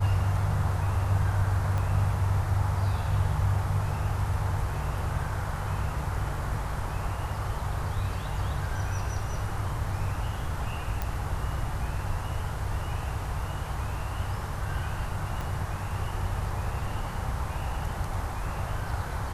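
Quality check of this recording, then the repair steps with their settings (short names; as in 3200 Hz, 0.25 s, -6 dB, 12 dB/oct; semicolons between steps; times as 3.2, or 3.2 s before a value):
1.78 pop -20 dBFS
11.02 pop
15.41 pop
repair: de-click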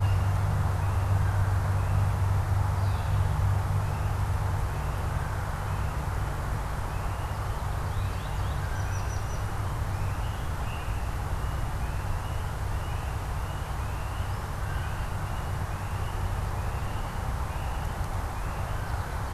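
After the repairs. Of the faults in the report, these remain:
1.78 pop
15.41 pop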